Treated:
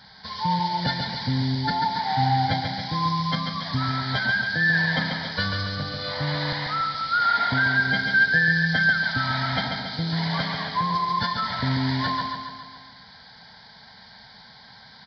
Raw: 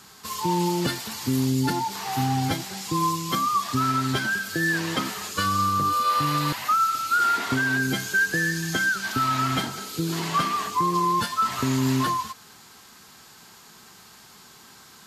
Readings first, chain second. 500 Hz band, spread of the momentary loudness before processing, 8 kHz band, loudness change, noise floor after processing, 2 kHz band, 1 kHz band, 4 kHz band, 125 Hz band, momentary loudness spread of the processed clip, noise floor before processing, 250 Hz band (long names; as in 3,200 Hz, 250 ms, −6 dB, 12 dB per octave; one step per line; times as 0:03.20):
−2.5 dB, 6 LU, below −20 dB, +0.5 dB, −49 dBFS, +4.5 dB, −1.5 dB, +3.5 dB, +2.0 dB, 8 LU, −50 dBFS, −2.5 dB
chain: phaser with its sweep stopped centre 1,800 Hz, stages 8
on a send: repeating echo 140 ms, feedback 56%, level −5 dB
on the sum: downsampling to 11,025 Hz
level +4 dB